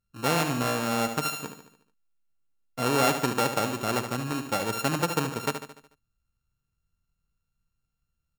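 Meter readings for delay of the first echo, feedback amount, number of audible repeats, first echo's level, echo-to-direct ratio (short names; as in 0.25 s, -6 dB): 73 ms, 51%, 5, -8.5 dB, -7.0 dB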